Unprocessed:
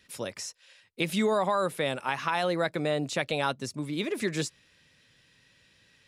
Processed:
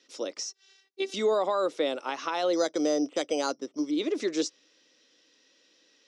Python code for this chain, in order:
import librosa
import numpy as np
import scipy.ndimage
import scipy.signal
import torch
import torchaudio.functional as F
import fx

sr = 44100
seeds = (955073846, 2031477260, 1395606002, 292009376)

y = fx.robotise(x, sr, hz=387.0, at=(0.44, 1.14))
y = fx.resample_bad(y, sr, factor=8, down='filtered', up='hold', at=(2.53, 3.91))
y = fx.cabinet(y, sr, low_hz=290.0, low_slope=24, high_hz=6700.0, hz=(300.0, 490.0, 940.0, 1700.0, 2400.0, 5800.0), db=(9, 4, -4, -8, -6, 8))